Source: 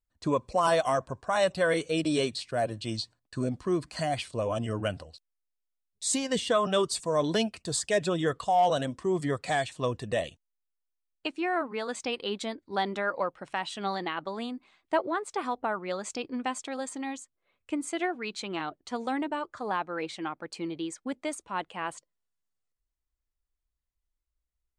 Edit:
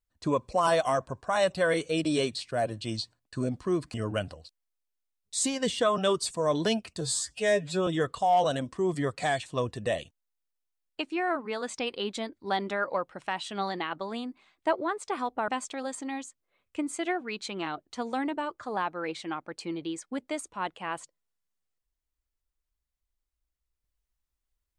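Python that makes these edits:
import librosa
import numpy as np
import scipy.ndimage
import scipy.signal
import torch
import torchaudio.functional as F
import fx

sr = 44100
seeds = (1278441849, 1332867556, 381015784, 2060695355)

y = fx.edit(x, sr, fx.cut(start_s=3.94, length_s=0.69),
    fx.stretch_span(start_s=7.7, length_s=0.43, factor=2.0),
    fx.cut(start_s=15.74, length_s=0.68), tone=tone)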